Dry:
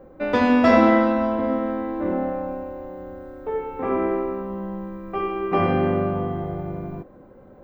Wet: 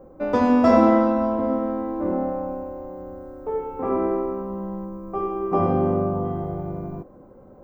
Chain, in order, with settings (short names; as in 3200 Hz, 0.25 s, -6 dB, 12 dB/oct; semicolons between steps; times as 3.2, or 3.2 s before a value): band shelf 2600 Hz -9.5 dB, from 4.84 s -16 dB, from 6.24 s -8.5 dB